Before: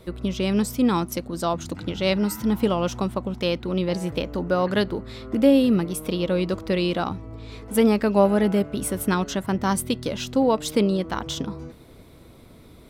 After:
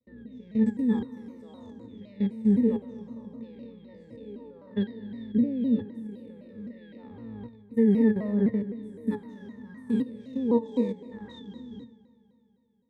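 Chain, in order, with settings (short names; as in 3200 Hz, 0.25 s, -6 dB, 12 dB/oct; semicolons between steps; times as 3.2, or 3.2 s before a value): spectral trails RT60 1.56 s; graphic EQ 125/250/1000/2000/4000/8000 Hz -9/+9/-9/+5/-5/+4 dB; level quantiser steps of 17 dB; gate with hold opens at -34 dBFS; octave resonator A, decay 0.11 s; on a send: multi-head echo 82 ms, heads first and third, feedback 70%, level -23 dB; on the sum: shaped vibrato saw down 3.9 Hz, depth 160 cents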